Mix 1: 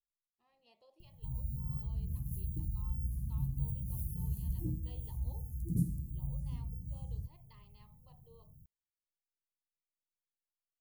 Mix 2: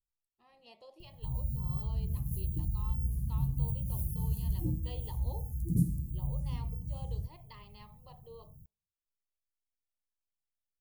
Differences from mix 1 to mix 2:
speech +11.0 dB; background +4.0 dB

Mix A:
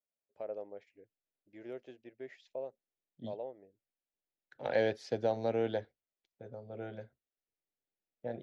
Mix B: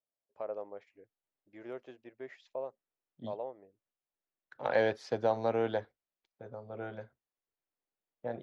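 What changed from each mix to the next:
master: add peaking EQ 1.1 kHz +12.5 dB 0.77 oct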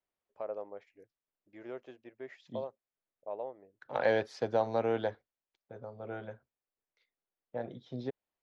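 second voice: entry -0.70 s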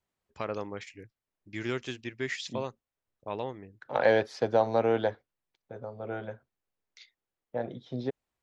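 first voice: remove band-pass filter 610 Hz, Q 3; second voice +5.0 dB

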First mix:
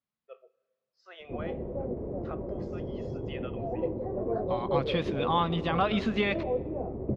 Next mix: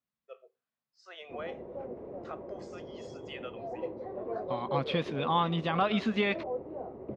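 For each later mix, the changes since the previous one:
first voice: remove distance through air 150 m; background: add tilt EQ +4.5 dB/octave; reverb: off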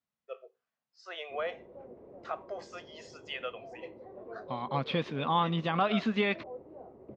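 first voice +6.0 dB; background -8.5 dB; master: add low-pass 6.7 kHz 12 dB/octave

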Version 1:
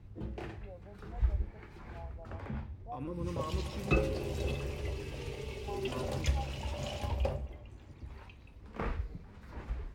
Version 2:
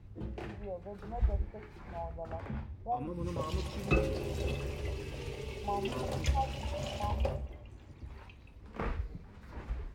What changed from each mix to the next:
first voice +10.0 dB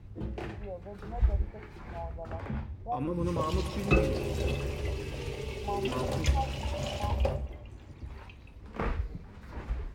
second voice +7.5 dB; background +4.0 dB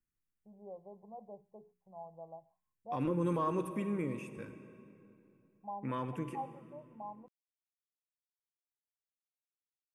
first voice -6.5 dB; background: muted

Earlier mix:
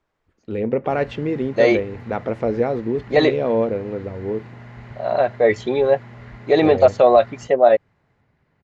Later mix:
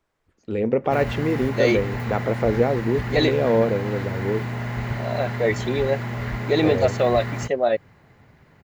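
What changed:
second voice: add peaking EQ 790 Hz -9 dB 2.1 oct; background +11.5 dB; master: remove distance through air 68 m

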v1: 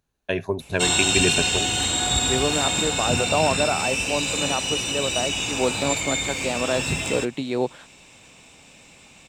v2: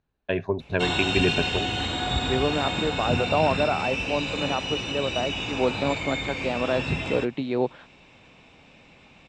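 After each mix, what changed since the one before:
master: add distance through air 230 m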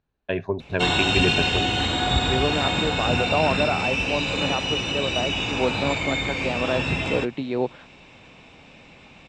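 background +4.5 dB

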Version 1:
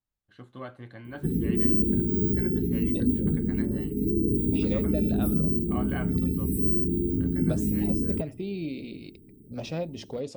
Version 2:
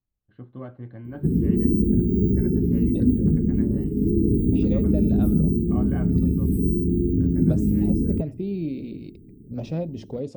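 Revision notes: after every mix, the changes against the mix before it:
first voice: add Gaussian low-pass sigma 2.4 samples; master: add tilt shelf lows +7.5 dB, about 630 Hz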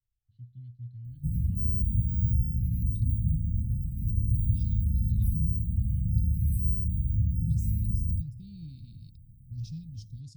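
master: add elliptic band-stop 120–4700 Hz, stop band 80 dB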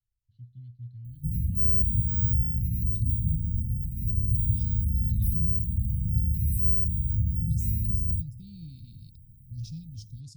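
master: add treble shelf 5.9 kHz +9.5 dB

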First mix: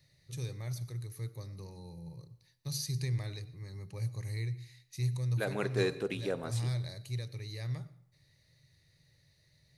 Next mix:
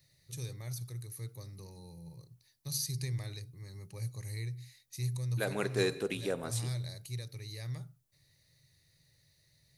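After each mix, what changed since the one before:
first voice: send off; master: add treble shelf 6.5 kHz +11.5 dB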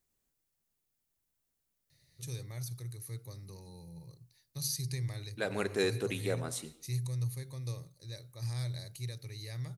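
first voice: entry +1.90 s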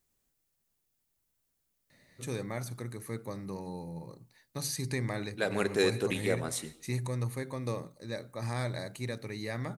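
first voice: remove FFT filter 150 Hz 0 dB, 210 Hz -22 dB, 370 Hz -12 dB, 690 Hz -16 dB, 1.6 kHz -15 dB, 5.4 kHz +3 dB, 7.9 kHz -5 dB, 11 kHz +3 dB; second voice +3.5 dB

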